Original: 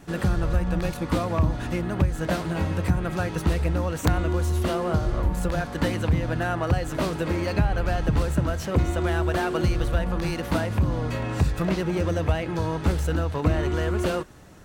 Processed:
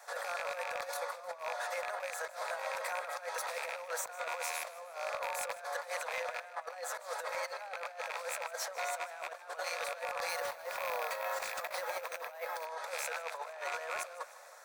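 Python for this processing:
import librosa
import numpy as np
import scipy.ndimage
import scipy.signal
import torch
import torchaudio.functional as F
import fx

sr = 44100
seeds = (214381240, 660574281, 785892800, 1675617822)

y = fx.rattle_buzz(x, sr, strikes_db=-24.0, level_db=-22.0)
y = scipy.signal.sosfilt(scipy.signal.butter(12, 520.0, 'highpass', fs=sr, output='sos'), y)
y = fx.peak_eq(y, sr, hz=2900.0, db=-14.0, octaves=0.34)
y = fx.over_compress(y, sr, threshold_db=-36.0, ratio=-0.5)
y = np.clip(y, -10.0 ** (-24.5 / 20.0), 10.0 ** (-24.5 / 20.0))
y = fx.echo_feedback(y, sr, ms=154, feedback_pct=60, wet_db=-18)
y = fx.resample_bad(y, sr, factor=3, down='none', up='hold', at=(10.29, 12.66))
y = y * librosa.db_to_amplitude(-3.0)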